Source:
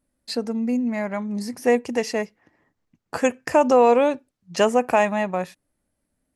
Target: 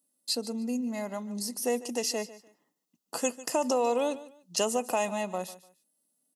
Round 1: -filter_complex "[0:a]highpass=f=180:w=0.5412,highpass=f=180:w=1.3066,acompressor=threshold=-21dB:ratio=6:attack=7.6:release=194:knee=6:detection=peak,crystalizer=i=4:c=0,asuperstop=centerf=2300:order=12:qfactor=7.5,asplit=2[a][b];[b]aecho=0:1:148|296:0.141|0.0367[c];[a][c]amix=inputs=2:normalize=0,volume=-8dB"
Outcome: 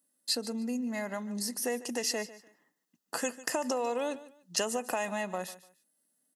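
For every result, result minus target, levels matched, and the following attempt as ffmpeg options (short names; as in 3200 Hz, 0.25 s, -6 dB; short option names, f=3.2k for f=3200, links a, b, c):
compressor: peak gain reduction +6 dB; 2000 Hz band +5.0 dB
-filter_complex "[0:a]highpass=f=180:w=0.5412,highpass=f=180:w=1.3066,acompressor=threshold=-14dB:ratio=6:attack=7.6:release=194:knee=6:detection=peak,crystalizer=i=4:c=0,asuperstop=centerf=2300:order=12:qfactor=7.5,asplit=2[a][b];[b]aecho=0:1:148|296:0.141|0.0367[c];[a][c]amix=inputs=2:normalize=0,volume=-8dB"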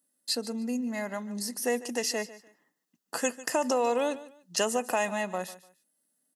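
2000 Hz band +5.0 dB
-filter_complex "[0:a]highpass=f=180:w=0.5412,highpass=f=180:w=1.3066,equalizer=f=1.7k:t=o:w=0.5:g=-12,acompressor=threshold=-14dB:ratio=6:attack=7.6:release=194:knee=6:detection=peak,crystalizer=i=4:c=0,asuperstop=centerf=2300:order=12:qfactor=7.5,asplit=2[a][b];[b]aecho=0:1:148|296:0.141|0.0367[c];[a][c]amix=inputs=2:normalize=0,volume=-8dB"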